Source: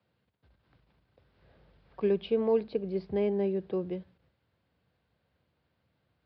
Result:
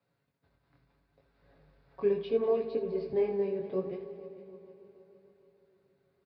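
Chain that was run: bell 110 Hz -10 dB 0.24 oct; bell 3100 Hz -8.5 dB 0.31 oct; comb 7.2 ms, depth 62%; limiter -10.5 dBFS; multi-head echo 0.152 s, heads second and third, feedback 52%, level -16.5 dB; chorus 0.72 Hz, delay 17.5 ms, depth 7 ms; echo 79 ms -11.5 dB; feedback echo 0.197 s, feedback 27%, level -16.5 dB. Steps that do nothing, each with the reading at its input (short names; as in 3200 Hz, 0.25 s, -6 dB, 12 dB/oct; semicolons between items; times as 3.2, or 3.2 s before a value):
limiter -10.5 dBFS: input peak -16.0 dBFS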